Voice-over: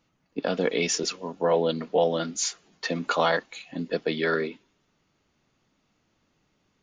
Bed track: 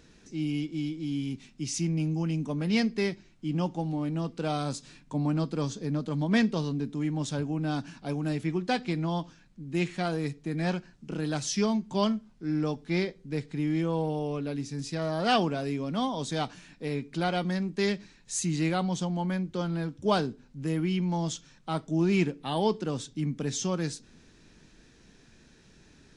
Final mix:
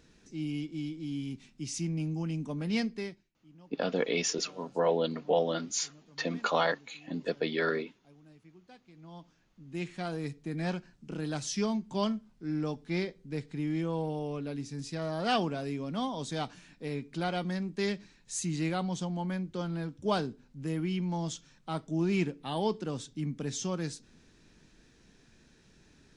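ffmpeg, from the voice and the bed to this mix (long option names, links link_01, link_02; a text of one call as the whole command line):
ffmpeg -i stem1.wav -i stem2.wav -filter_complex "[0:a]adelay=3350,volume=-4.5dB[link_01];[1:a]volume=18.5dB,afade=type=out:start_time=2.79:duration=0.52:silence=0.0749894,afade=type=in:start_time=8.93:duration=1.47:silence=0.0707946[link_02];[link_01][link_02]amix=inputs=2:normalize=0" out.wav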